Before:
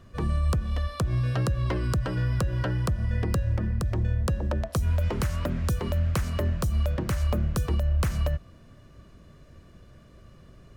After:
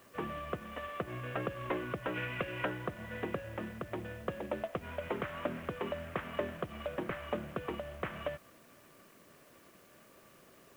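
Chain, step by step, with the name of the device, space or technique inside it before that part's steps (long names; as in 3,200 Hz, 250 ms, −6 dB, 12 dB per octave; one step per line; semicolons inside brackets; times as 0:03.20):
army field radio (band-pass filter 320–3,000 Hz; variable-slope delta modulation 16 kbit/s; white noise bed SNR 26 dB)
0:02.14–0:02.65: parametric band 2,500 Hz +11.5 dB 0.63 octaves
level −1.5 dB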